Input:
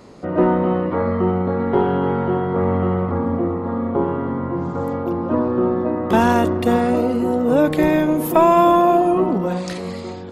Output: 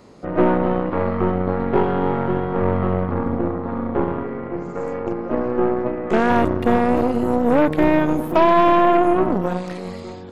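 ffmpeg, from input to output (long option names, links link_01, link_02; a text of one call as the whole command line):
ffmpeg -i in.wav -filter_complex "[0:a]asettb=1/sr,asplit=3[link_01][link_02][link_03];[link_01]atrim=end=4.234[link_04];[link_02]atrim=start=4.23:end=6.3,asetpts=PTS-STARTPTS,afade=type=in:duration=0.004:curve=qsin,afade=type=out:start_time=2.066:duration=0.004:curve=qsin,highpass=180,equalizer=frequency=280:width_type=q:width=4:gain=-6,equalizer=frequency=420:width_type=q:width=4:gain=6,equalizer=frequency=940:width_type=q:width=4:gain=-9,equalizer=frequency=2200:width_type=q:width=4:gain=8,equalizer=frequency=3500:width_type=q:width=4:gain=-8,equalizer=frequency=7000:width_type=q:width=4:gain=8,lowpass=frequency=8700:width=0.5412,lowpass=frequency=8700:width=1.3066[link_05];[link_03]atrim=start=6.296[link_06];[link_04][link_05]acrossfade=duration=0.004:curve1=hsin:curve2=qsin[link_07];[link_07][link_06]acrossfade=duration=0.004:curve1=qsin:curve2=hsin,aeval=exprs='0.708*(cos(1*acos(clip(val(0)/0.708,-1,1)))-cos(1*PI/2))+0.0794*(cos(5*acos(clip(val(0)/0.708,-1,1)))-cos(5*PI/2))+0.0891*(cos(6*acos(clip(val(0)/0.708,-1,1)))-cos(6*PI/2))+0.0708*(cos(7*acos(clip(val(0)/0.708,-1,1)))-cos(7*PI/2))':channel_layout=same,acrossover=split=2700[link_08][link_09];[link_09]acompressor=threshold=-42dB:ratio=4:attack=1:release=60[link_10];[link_08][link_10]amix=inputs=2:normalize=0,volume=-2dB" out.wav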